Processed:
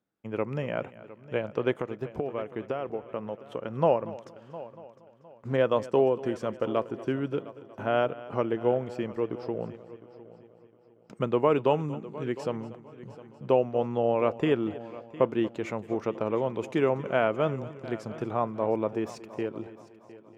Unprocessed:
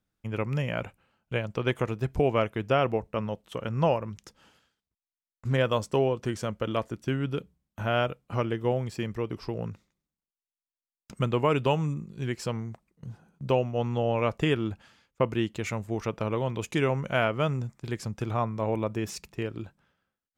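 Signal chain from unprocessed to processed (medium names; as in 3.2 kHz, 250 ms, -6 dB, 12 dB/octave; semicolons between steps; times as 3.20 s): high-pass 380 Hz 12 dB/octave; tilt EQ -4 dB/octave; 1.75–3.77 s: compression 6:1, threshold -29 dBFS, peak gain reduction 12 dB; multi-head delay 236 ms, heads first and third, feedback 44%, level -18 dB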